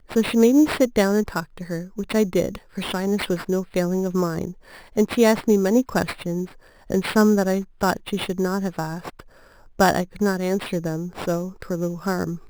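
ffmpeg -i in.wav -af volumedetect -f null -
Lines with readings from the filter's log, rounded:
mean_volume: -22.2 dB
max_volume: -4.6 dB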